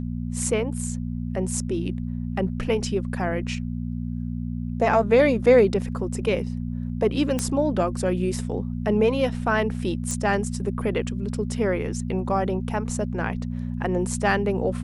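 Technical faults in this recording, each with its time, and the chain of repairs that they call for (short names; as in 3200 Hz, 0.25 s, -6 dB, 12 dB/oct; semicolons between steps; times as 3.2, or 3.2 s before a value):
hum 60 Hz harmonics 4 -29 dBFS
7.39 pop -11 dBFS
10.11 pop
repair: de-click; de-hum 60 Hz, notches 4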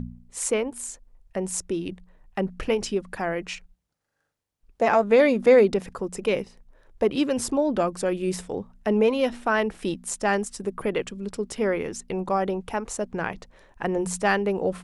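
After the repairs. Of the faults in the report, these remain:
7.39 pop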